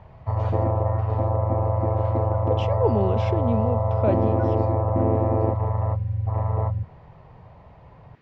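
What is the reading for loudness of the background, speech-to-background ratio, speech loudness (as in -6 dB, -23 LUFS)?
-23.5 LUFS, -4.5 dB, -28.0 LUFS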